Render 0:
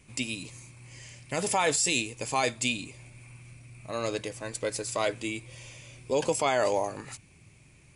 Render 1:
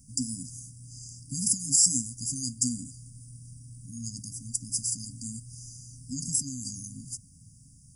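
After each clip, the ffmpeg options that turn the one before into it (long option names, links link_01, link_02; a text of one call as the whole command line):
ffmpeg -i in.wav -af "afftfilt=real='re*(1-between(b*sr/4096,280,4700))':imag='im*(1-between(b*sr/4096,280,4700))':win_size=4096:overlap=0.75,highshelf=frequency=8900:gain=10.5,volume=2.5dB" out.wav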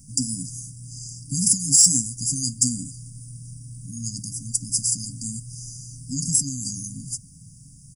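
ffmpeg -i in.wav -af "acontrast=79,aecho=1:1:6.2:0.35" out.wav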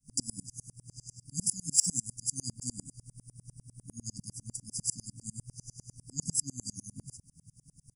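ffmpeg -i in.wav -filter_complex "[0:a]acrossover=split=190|3000[link_01][link_02][link_03];[link_02]acompressor=threshold=-34dB:ratio=6[link_04];[link_01][link_04][link_03]amix=inputs=3:normalize=0,aeval=exprs='val(0)*pow(10,-34*if(lt(mod(-10*n/s,1),2*abs(-10)/1000),1-mod(-10*n/s,1)/(2*abs(-10)/1000),(mod(-10*n/s,1)-2*abs(-10)/1000)/(1-2*abs(-10)/1000))/20)':channel_layout=same,volume=-2.5dB" out.wav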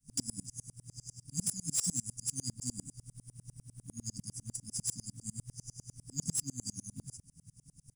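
ffmpeg -i in.wav -filter_complex "[0:a]acrossover=split=790|1100[link_01][link_02][link_03];[link_03]asoftclip=type=tanh:threshold=-26dB[link_04];[link_01][link_02][link_04]amix=inputs=3:normalize=0,acrusher=bits=6:mode=log:mix=0:aa=0.000001" out.wav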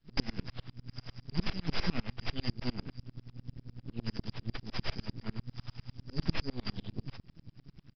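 ffmpeg -i in.wav -af "aeval=exprs='max(val(0),0)':channel_layout=same,aresample=11025,aresample=44100,volume=10.5dB" out.wav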